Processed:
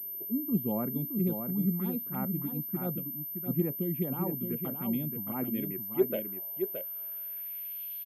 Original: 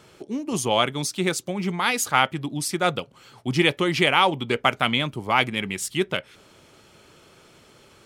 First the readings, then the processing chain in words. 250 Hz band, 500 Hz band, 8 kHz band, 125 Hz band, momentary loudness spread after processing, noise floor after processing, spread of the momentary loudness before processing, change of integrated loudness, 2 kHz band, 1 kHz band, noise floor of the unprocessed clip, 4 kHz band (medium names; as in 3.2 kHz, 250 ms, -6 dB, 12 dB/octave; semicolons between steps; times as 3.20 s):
-3.5 dB, -9.0 dB, under -40 dB, -4.0 dB, 6 LU, -39 dBFS, 8 LU, -9.0 dB, -29.0 dB, -21.0 dB, -54 dBFS, under -30 dB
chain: gain riding within 4 dB 2 s; touch-sensitive phaser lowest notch 170 Hz, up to 3.3 kHz, full sweep at -15.5 dBFS; band-pass sweep 210 Hz -> 3.3 kHz, 5.25–7.98 s; on a send: delay 620 ms -6.5 dB; on the sum: class-D stage that switches slowly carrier 13 kHz